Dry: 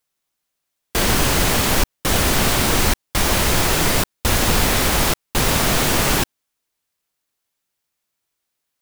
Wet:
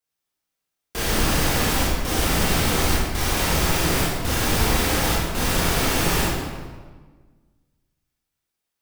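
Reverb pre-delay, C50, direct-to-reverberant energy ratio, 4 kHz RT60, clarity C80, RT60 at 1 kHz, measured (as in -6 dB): 20 ms, -1.5 dB, -7.0 dB, 1.0 s, 1.0 dB, 1.4 s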